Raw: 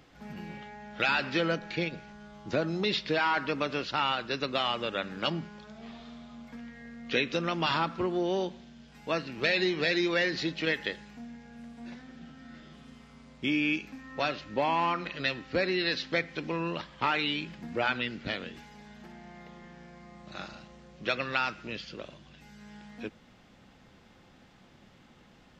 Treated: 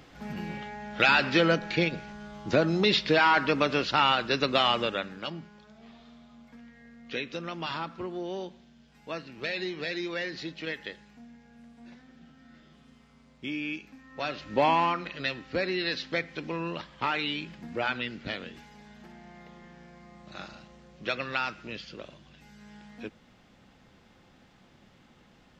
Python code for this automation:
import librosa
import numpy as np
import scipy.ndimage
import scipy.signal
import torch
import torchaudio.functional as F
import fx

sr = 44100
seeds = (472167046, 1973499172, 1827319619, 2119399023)

y = fx.gain(x, sr, db=fx.line((4.8, 5.5), (5.26, -6.0), (14.1, -6.0), (14.65, 5.5), (15.04, -1.0)))